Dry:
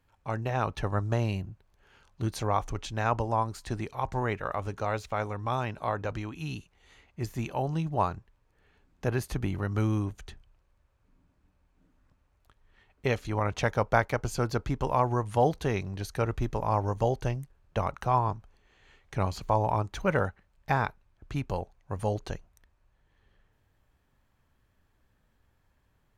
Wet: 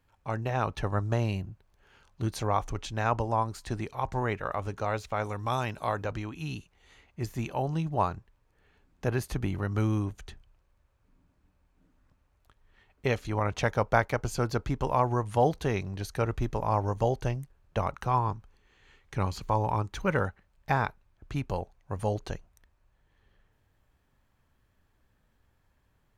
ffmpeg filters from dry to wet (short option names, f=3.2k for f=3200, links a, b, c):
-filter_complex "[0:a]asettb=1/sr,asplit=3[a][b][c];[a]atrim=end=5.244[d];[b]atrim=start=5.24:end=6.04,asetpts=PTS-STARTPTS,afade=t=in:d=0.004:c=qsin,afade=t=out:st=0.796:d=0.004:c=qsin,highshelf=f=4.6k:g=11[e];[c]atrim=start=6.036[f];[d][e]acrossfade=d=0.004:c1=hsin:c2=qsin[g];[g][f]acrossfade=d=0.004:c1=qsin:c2=hsin,asettb=1/sr,asplit=3[h][i][j];[h]atrim=end=17.964[k];[i]atrim=start=17.96:end=20.26,asetpts=PTS-STARTPTS,afade=t=in:d=0.004:c=qsin,afade=t=out:st=2.296:d=0.004:c=qsin,equalizer=f=660:t=o:w=0.35:g=-7[l];[j]atrim=start=20.256[m];[k][l]acrossfade=d=0.004:c1=hsin:c2=qsin[n];[n][m]acrossfade=d=0.004:c1=qsin:c2=hsin"